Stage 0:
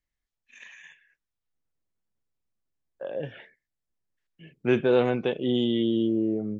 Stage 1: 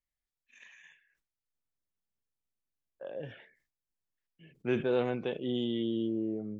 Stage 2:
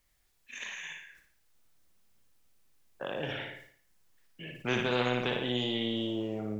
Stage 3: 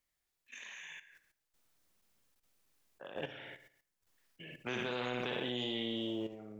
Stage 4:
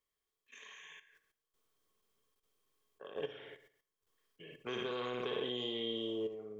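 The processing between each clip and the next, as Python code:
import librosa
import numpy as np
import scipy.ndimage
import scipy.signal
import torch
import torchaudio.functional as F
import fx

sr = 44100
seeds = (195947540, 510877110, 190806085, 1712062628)

y1 = fx.sustainer(x, sr, db_per_s=120.0)
y1 = y1 * librosa.db_to_amplitude(-8.0)
y2 = fx.room_flutter(y1, sr, wall_m=9.7, rt60_s=0.53)
y2 = fx.spectral_comp(y2, sr, ratio=2.0)
y3 = fx.low_shelf(y2, sr, hz=110.0, db=-9.5)
y3 = fx.level_steps(y3, sr, step_db=12)
y3 = y3 * librosa.db_to_amplitude(-1.5)
y4 = fx.small_body(y3, sr, hz=(430.0, 1100.0, 3200.0), ring_ms=50, db=15)
y4 = y4 * librosa.db_to_amplitude(-6.0)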